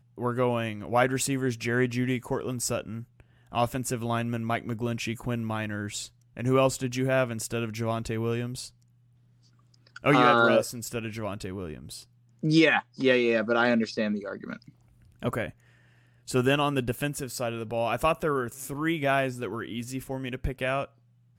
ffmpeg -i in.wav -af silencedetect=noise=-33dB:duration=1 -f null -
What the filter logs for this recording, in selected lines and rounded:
silence_start: 8.66
silence_end: 9.96 | silence_duration: 1.30